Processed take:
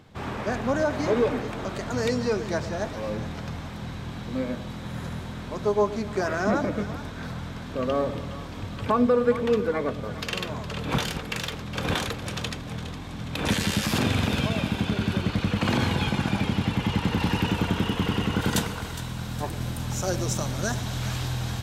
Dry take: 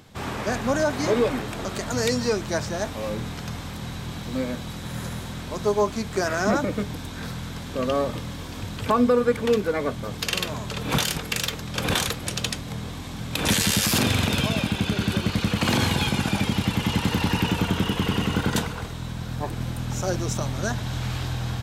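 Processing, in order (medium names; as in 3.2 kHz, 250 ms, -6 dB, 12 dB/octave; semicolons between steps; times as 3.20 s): treble shelf 4.8 kHz -12 dB, from 17.19 s -6 dB, from 18.41 s +4.5 dB; two-band feedback delay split 710 Hz, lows 111 ms, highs 413 ms, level -12.5 dB; trim -1.5 dB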